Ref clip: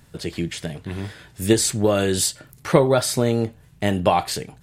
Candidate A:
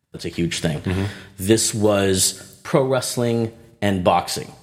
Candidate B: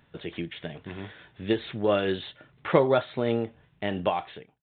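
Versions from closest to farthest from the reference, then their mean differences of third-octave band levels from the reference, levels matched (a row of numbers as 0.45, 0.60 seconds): A, B; 3.5, 7.5 decibels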